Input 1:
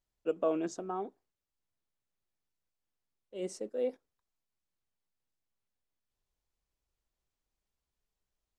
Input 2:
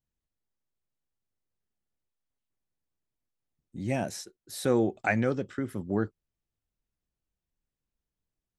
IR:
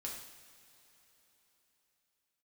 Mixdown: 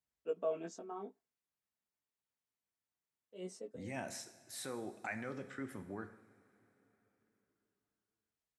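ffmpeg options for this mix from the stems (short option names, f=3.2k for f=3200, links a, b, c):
-filter_complex "[0:a]aecho=1:1:4.5:0.47,flanger=delay=16.5:depth=4.5:speed=0.29,volume=-5.5dB[a];[1:a]alimiter=limit=-24dB:level=0:latency=1:release=49,equalizer=f=1k:t=o:w=1:g=7,equalizer=f=2k:t=o:w=1:g=8,equalizer=f=8k:t=o:w=1:g=6,volume=-14.5dB,asplit=3[b][c][d];[c]volume=-3dB[e];[d]apad=whole_len=378975[f];[a][f]sidechaincompress=threshold=-58dB:ratio=8:attack=21:release=390[g];[2:a]atrim=start_sample=2205[h];[e][h]afir=irnorm=-1:irlink=0[i];[g][b][i]amix=inputs=3:normalize=0,highpass=85"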